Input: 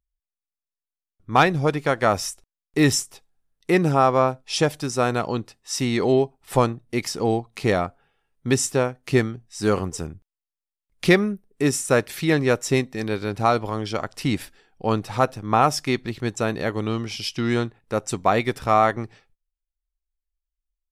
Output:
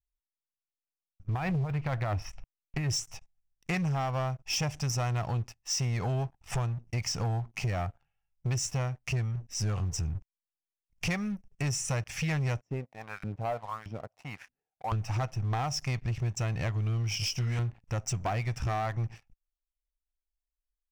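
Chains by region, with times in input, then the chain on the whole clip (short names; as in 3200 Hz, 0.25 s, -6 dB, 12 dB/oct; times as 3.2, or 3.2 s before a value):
1.34–2.9 negative-ratio compressor -22 dBFS + air absorption 370 m + mismatched tape noise reduction encoder only
12.61–14.92 dynamic EQ 800 Hz, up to -6 dB, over -35 dBFS, Q 2.5 + LFO band-pass saw up 1.6 Hz 240–1800 Hz
17.18–17.59 high shelf 5700 Hz +7.5 dB + detuned doubles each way 33 cents
whole clip: EQ curve 120 Hz 0 dB, 360 Hz -27 dB, 720 Hz -9 dB, 1100 Hz -13 dB, 1600 Hz -14 dB, 2700 Hz -7 dB, 4000 Hz -25 dB, 5600 Hz -5 dB, 12000 Hz -27 dB; compressor 6:1, threshold -36 dBFS; sample leveller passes 3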